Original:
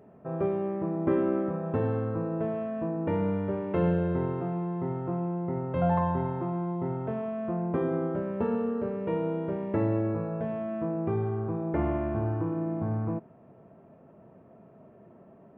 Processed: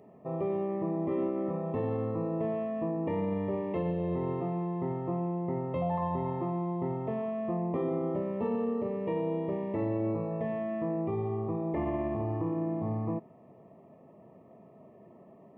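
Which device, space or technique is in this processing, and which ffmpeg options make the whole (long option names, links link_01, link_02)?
PA system with an anti-feedback notch: -filter_complex "[0:a]highpass=frequency=130:poles=1,asuperstop=centerf=1500:order=20:qfactor=3.6,alimiter=limit=-23.5dB:level=0:latency=1:release=30,asettb=1/sr,asplit=3[link_01][link_02][link_03];[link_01]atrim=end=10.304[link_04];[link_02]atrim=start=10.3:end=11.02,asetpts=PTS-STARTPTS,afade=type=in:duration=0.004:curve=qsin,afade=type=out:start_time=0.716:duration=0.004:curve=qsin,equalizer=frequency=1800:width_type=o:width=0.34:gain=5.5[link_05];[link_03]atrim=start=11.016[link_06];[link_04][link_05]acrossfade=duration=0.004:curve1=hsin:curve2=qsin[link_07];[link_07][link_06]acrossfade=duration=0.004:curve1=qsin:curve2=hsin"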